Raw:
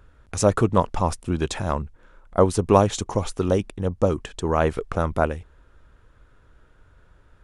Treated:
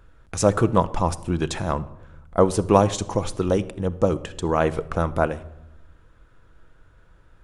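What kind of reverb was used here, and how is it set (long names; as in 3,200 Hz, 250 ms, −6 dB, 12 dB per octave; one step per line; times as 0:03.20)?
rectangular room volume 3,200 cubic metres, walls furnished, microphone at 0.7 metres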